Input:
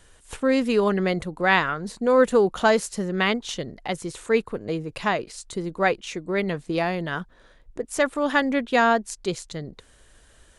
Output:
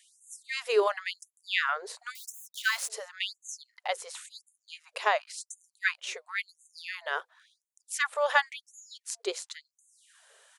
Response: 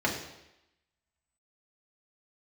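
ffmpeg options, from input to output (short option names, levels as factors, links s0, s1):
-filter_complex "[0:a]asettb=1/sr,asplit=3[s0][s1][s2];[s0]atrim=end=2.154[s3];[s1]atrim=start=2.15:end=2.9,asetpts=PTS-STARTPTS,afade=t=in:d=0.004:c=qsin,afade=t=out:st=0.746:d=0.004:c=qsin,acrusher=bits=5:mix=0:aa=0.5[s4];[s2]atrim=start=2.896[s5];[s3][s4]acrossfade=d=0.004:c1=hsin:c2=qsin[s6];[s6][s5]acrossfade=d=0.004:c1=qsin:c2=hsin,acrossover=split=180[s7][s8];[s7]adelay=240[s9];[s9][s8]amix=inputs=2:normalize=0,afftfilt=real='re*gte(b*sr/1024,380*pow(6300/380,0.5+0.5*sin(2*PI*0.94*pts/sr)))':imag='im*gte(b*sr/1024,380*pow(6300/380,0.5+0.5*sin(2*PI*0.94*pts/sr)))':win_size=1024:overlap=0.75,volume=0.841"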